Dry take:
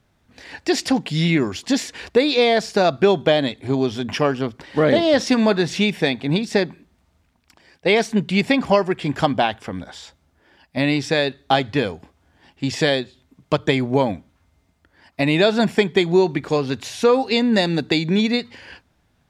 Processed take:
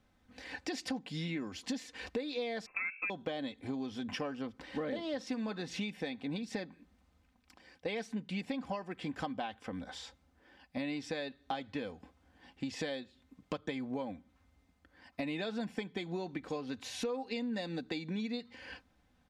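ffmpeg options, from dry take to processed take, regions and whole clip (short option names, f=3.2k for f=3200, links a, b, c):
-filter_complex "[0:a]asettb=1/sr,asplit=3[a][b][c];[a]atrim=end=2.664[d];[b]atrim=start=2.66:end=3.1,asetpts=PTS-STARTPTS,afade=t=in:d=0.004:c=qsin,afade=t=out:st=0.436:d=0.004:c=qsin,bandreject=f=45.77:t=h:w=4,bandreject=f=91.54:t=h:w=4,bandreject=f=137.31:t=h:w=4,bandreject=f=183.08:t=h:w=4,bandreject=f=228.85:t=h:w=4,bandreject=f=274.62:t=h:w=4,bandreject=f=320.39:t=h:w=4,bandreject=f=366.16:t=h:w=4,bandreject=f=411.93:t=h:w=4,bandreject=f=457.7:t=h:w=4,bandreject=f=503.47:t=h:w=4,bandreject=f=549.24:t=h:w=4,bandreject=f=595.01:t=h:w=4,lowpass=f=2.4k:t=q:w=0.5098,lowpass=f=2.4k:t=q:w=0.6013,lowpass=f=2.4k:t=q:w=0.9,lowpass=f=2.4k:t=q:w=2.563,afreqshift=-2800[e];[c]atrim=start=3.096[f];[d][e]acrossfade=d=0.004:c1=hsin:c2=qsin[g];[g][f]acrossfade=d=0.004:c1=qsin:c2=hsin,highshelf=f=5.7k:g=-4.5,aecho=1:1:3.9:0.53,acompressor=threshold=-30dB:ratio=4,volume=-7.5dB"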